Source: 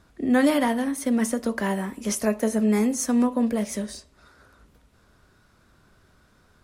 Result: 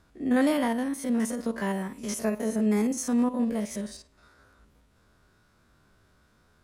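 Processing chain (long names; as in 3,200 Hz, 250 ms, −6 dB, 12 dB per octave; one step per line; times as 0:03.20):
spectrum averaged block by block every 50 ms
level −3 dB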